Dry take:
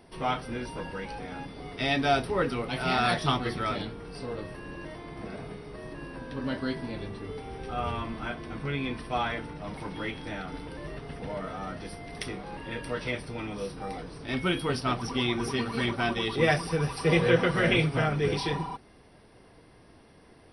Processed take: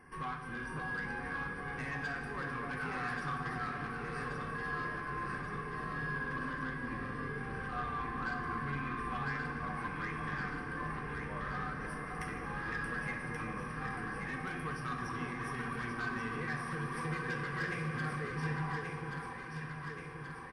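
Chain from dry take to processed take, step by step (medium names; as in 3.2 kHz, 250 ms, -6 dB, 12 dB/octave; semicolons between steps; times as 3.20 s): compression 6:1, threshold -35 dBFS, peak gain reduction 17.5 dB; static phaser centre 1.6 kHz, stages 4; small resonant body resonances 720/1100/1600 Hz, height 17 dB, ringing for 25 ms; saturation -29.5 dBFS, distortion -16 dB; echo whose repeats swap between lows and highs 565 ms, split 1 kHz, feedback 78%, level -3 dB; on a send at -3 dB: reverberation RT60 2.4 s, pre-delay 3 ms; on the sum: resampled via 32 kHz; trim -4.5 dB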